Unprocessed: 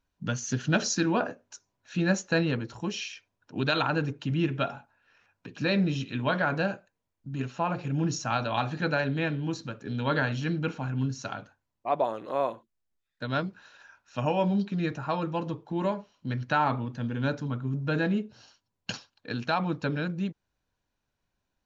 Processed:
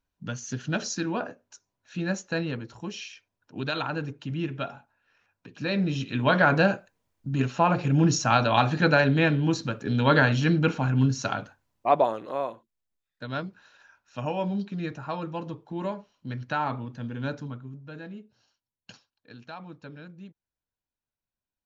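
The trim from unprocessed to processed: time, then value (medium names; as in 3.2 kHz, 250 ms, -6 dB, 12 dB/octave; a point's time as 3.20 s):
5.56 s -3.5 dB
6.44 s +7 dB
11.89 s +7 dB
12.46 s -3 dB
17.43 s -3 dB
17.83 s -14 dB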